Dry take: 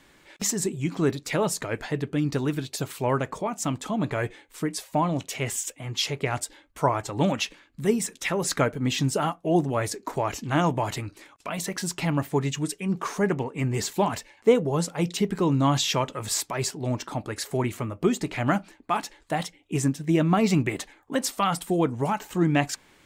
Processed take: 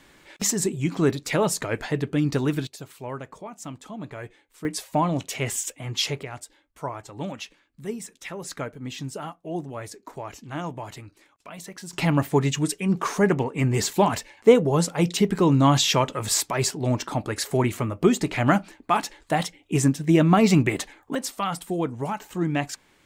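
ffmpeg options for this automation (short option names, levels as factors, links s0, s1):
-af "asetnsamples=n=441:p=0,asendcmd='2.67 volume volume -9.5dB;4.65 volume volume 1.5dB;6.23 volume volume -9dB;11.93 volume volume 4dB;21.15 volume volume -3dB',volume=1.33"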